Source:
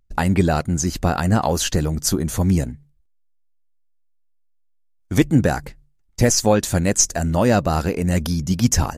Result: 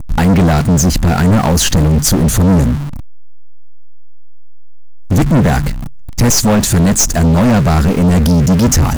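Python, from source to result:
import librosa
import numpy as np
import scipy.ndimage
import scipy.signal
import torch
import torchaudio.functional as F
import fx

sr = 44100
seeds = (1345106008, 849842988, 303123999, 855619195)

y = x + 0.5 * 10.0 ** (-31.0 / 20.0) * np.sign(x)
y = fx.low_shelf_res(y, sr, hz=300.0, db=6.5, q=1.5)
y = fx.leveller(y, sr, passes=5)
y = y * 10.0 ** (-8.5 / 20.0)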